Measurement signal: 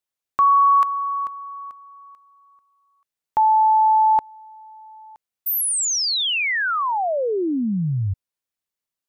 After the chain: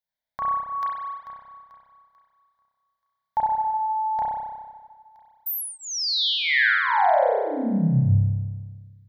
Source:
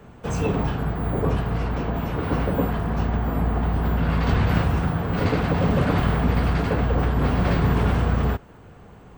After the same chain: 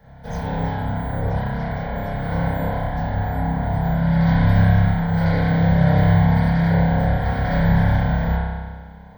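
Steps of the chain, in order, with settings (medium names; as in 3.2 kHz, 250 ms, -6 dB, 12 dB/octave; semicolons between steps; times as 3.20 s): static phaser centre 1.8 kHz, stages 8; spring tank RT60 1.5 s, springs 30 ms, chirp 20 ms, DRR -7 dB; trim -3 dB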